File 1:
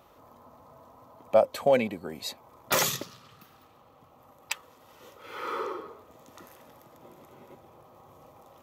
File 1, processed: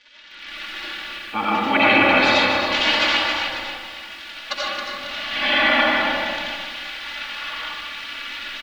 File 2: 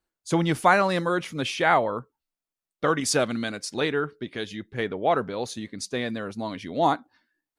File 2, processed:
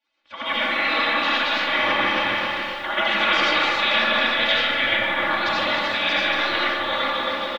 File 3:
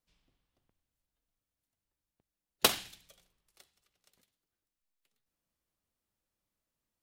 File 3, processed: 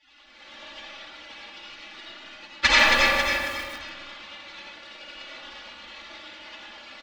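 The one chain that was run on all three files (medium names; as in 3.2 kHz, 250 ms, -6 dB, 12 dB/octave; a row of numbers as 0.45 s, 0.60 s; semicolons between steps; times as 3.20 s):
on a send: feedback delay 273 ms, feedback 43%, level -10 dB; on the sum: crackle 290 per s -37 dBFS; reverse; compression 6:1, threshold -32 dBFS; reverse; spectral gate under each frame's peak -15 dB weak; inverse Chebyshev low-pass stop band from 10 kHz, stop band 60 dB; comb 3.5 ms, depth 87%; algorithmic reverb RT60 1.7 s, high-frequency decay 0.35×, pre-delay 45 ms, DRR -6.5 dB; level rider gain up to 9.5 dB; tilt EQ +2 dB/octave; bit-crushed delay 152 ms, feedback 35%, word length 9-bit, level -10.5 dB; normalise loudness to -20 LUFS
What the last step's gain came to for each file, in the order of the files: +11.5 dB, +6.5 dB, +22.5 dB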